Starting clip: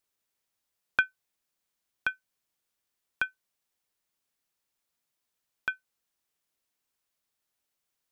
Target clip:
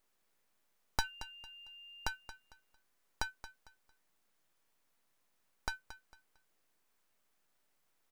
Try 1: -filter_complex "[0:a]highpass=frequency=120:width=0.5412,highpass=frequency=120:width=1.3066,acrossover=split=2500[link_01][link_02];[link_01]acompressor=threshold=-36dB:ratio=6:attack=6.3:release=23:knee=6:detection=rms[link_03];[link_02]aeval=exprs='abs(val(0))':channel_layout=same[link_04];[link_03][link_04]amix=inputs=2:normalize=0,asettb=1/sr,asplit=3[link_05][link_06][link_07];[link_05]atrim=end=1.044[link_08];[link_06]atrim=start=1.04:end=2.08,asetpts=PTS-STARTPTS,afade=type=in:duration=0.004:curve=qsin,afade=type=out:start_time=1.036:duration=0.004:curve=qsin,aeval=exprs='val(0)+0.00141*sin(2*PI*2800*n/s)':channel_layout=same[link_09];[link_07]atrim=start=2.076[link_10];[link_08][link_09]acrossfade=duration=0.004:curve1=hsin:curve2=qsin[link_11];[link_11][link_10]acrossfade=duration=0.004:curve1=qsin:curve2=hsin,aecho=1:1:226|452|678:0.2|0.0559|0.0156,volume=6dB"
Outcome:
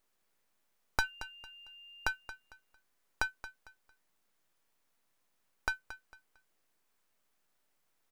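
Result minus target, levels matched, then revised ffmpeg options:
downward compressor: peak gain reduction −9 dB
-filter_complex "[0:a]highpass=frequency=120:width=0.5412,highpass=frequency=120:width=1.3066,acrossover=split=2500[link_01][link_02];[link_01]acompressor=threshold=-46.5dB:ratio=6:attack=6.3:release=23:knee=6:detection=rms[link_03];[link_02]aeval=exprs='abs(val(0))':channel_layout=same[link_04];[link_03][link_04]amix=inputs=2:normalize=0,asettb=1/sr,asplit=3[link_05][link_06][link_07];[link_05]atrim=end=1.044[link_08];[link_06]atrim=start=1.04:end=2.08,asetpts=PTS-STARTPTS,afade=type=in:duration=0.004:curve=qsin,afade=type=out:start_time=1.036:duration=0.004:curve=qsin,aeval=exprs='val(0)+0.00141*sin(2*PI*2800*n/s)':channel_layout=same[link_09];[link_07]atrim=start=2.076[link_10];[link_08][link_09]acrossfade=duration=0.004:curve1=hsin:curve2=qsin[link_11];[link_11][link_10]acrossfade=duration=0.004:curve1=qsin:curve2=hsin,aecho=1:1:226|452|678:0.2|0.0559|0.0156,volume=6dB"

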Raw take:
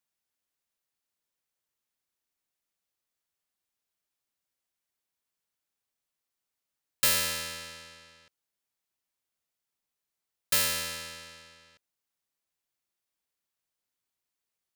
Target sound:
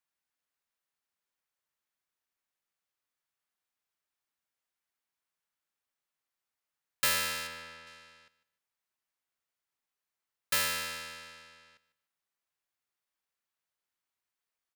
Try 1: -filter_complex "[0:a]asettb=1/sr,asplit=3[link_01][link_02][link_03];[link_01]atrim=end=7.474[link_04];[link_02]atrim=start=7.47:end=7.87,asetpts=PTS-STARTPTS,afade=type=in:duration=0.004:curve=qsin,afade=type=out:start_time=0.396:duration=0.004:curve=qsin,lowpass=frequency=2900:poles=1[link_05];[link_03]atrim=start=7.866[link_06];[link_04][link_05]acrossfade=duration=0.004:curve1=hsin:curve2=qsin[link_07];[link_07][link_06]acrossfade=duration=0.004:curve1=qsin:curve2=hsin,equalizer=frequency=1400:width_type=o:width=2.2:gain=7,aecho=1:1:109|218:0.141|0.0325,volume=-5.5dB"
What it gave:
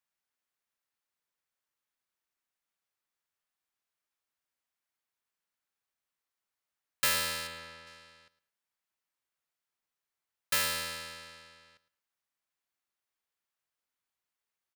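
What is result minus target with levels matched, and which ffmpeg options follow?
echo 41 ms early
-filter_complex "[0:a]asettb=1/sr,asplit=3[link_01][link_02][link_03];[link_01]atrim=end=7.474[link_04];[link_02]atrim=start=7.47:end=7.87,asetpts=PTS-STARTPTS,afade=type=in:duration=0.004:curve=qsin,afade=type=out:start_time=0.396:duration=0.004:curve=qsin,lowpass=frequency=2900:poles=1[link_05];[link_03]atrim=start=7.866[link_06];[link_04][link_05]acrossfade=duration=0.004:curve1=hsin:curve2=qsin[link_07];[link_07][link_06]acrossfade=duration=0.004:curve1=qsin:curve2=hsin,equalizer=frequency=1400:width_type=o:width=2.2:gain=7,aecho=1:1:150|300:0.141|0.0325,volume=-5.5dB"

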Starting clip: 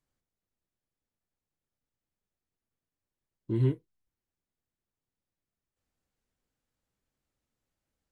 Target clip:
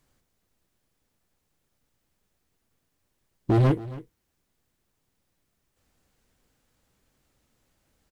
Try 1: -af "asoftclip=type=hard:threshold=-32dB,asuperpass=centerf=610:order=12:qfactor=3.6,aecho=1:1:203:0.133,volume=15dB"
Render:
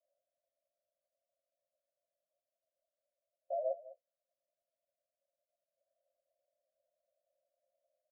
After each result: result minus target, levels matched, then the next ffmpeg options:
500 Hz band +8.5 dB; echo 69 ms early
-af "asoftclip=type=hard:threshold=-32dB,aecho=1:1:203:0.133,volume=15dB"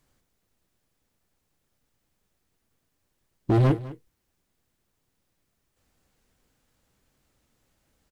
echo 69 ms early
-af "asoftclip=type=hard:threshold=-32dB,aecho=1:1:272:0.133,volume=15dB"

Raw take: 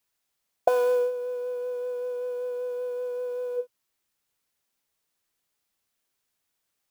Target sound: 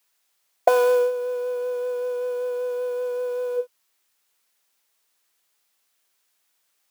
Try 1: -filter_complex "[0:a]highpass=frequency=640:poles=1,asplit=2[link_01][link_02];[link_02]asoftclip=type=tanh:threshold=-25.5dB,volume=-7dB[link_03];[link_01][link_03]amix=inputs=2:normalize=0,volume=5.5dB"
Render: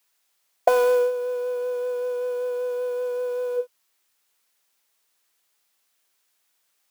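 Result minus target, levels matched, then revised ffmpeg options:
soft clipping: distortion +7 dB
-filter_complex "[0:a]highpass=frequency=640:poles=1,asplit=2[link_01][link_02];[link_02]asoftclip=type=tanh:threshold=-16.5dB,volume=-7dB[link_03];[link_01][link_03]amix=inputs=2:normalize=0,volume=5.5dB"

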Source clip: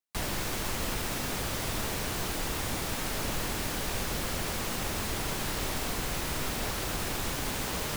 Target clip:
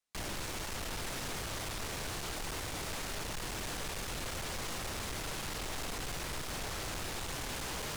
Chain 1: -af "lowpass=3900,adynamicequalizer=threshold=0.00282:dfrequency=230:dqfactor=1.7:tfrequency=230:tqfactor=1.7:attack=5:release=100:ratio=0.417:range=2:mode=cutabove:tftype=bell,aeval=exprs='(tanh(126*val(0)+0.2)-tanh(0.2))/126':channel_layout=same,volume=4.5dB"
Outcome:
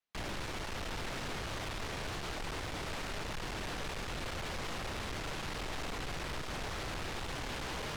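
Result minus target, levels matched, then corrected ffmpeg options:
8,000 Hz band −6.0 dB
-af "lowpass=10000,adynamicequalizer=threshold=0.00282:dfrequency=230:dqfactor=1.7:tfrequency=230:tqfactor=1.7:attack=5:release=100:ratio=0.417:range=2:mode=cutabove:tftype=bell,aeval=exprs='(tanh(126*val(0)+0.2)-tanh(0.2))/126':channel_layout=same,volume=4.5dB"

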